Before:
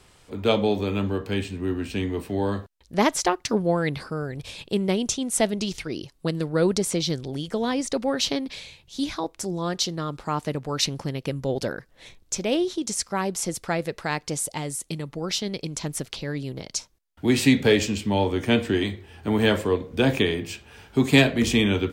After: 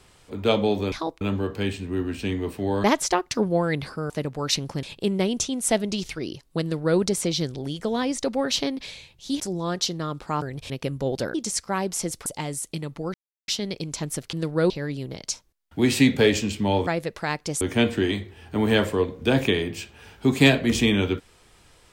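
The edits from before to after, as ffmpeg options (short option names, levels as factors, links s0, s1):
-filter_complex "[0:a]asplit=16[s0][s1][s2][s3][s4][s5][s6][s7][s8][s9][s10][s11][s12][s13][s14][s15];[s0]atrim=end=0.922[s16];[s1]atrim=start=9.088:end=9.382[s17];[s2]atrim=start=0.918:end=2.552[s18];[s3]atrim=start=2.978:end=4.242[s19];[s4]atrim=start=10.398:end=11.132[s20];[s5]atrim=start=4.518:end=9.092[s21];[s6]atrim=start=9.378:end=10.402[s22];[s7]atrim=start=4.238:end=4.522[s23];[s8]atrim=start=11.128:end=11.772[s24];[s9]atrim=start=12.768:end=13.692[s25];[s10]atrim=start=14.428:end=15.31,asetpts=PTS-STARTPTS,afade=t=out:st=0.878:d=0.004:c=hsin,apad=pad_dur=0.34[s26];[s11]atrim=start=15.31:end=16.162,asetpts=PTS-STARTPTS,afade=t=in:d=0.004:c=hsin[s27];[s12]atrim=start=6.308:end=6.682[s28];[s13]atrim=start=16.158:end=18.332[s29];[s14]atrim=start=13.688:end=14.432[s30];[s15]atrim=start=18.328[s31];[s16][s17]acrossfade=d=0.004:c1=hsin:c2=hsin[s32];[s32][s18]acrossfade=d=0.004:c1=hsin:c2=hsin[s33];[s33][s19]acrossfade=d=0.004:c1=hsin:c2=hsin[s34];[s34][s20]acrossfade=d=0.004:c1=hsin:c2=hsin[s35];[s35][s21]acrossfade=d=0.004:c1=hsin:c2=hsin[s36];[s36][s22]acrossfade=d=0.004:c1=hsin:c2=hsin[s37];[s37][s23]acrossfade=d=0.004:c1=hsin:c2=hsin[s38];[s38][s24]acrossfade=d=0.004:c1=hsin:c2=hsin[s39];[s39][s25]acrossfade=d=0.004:c1=hsin:c2=hsin[s40];[s26][s27]concat=n=2:v=0:a=1[s41];[s40][s41]acrossfade=d=0.004:c1=hsin:c2=hsin[s42];[s42][s28]acrossfade=d=0.004:c1=hsin:c2=hsin[s43];[s43][s29]acrossfade=d=0.004:c1=hsin:c2=hsin[s44];[s44][s30]acrossfade=d=0.004:c1=hsin:c2=hsin[s45];[s45][s31]acrossfade=d=0.004:c1=hsin:c2=hsin"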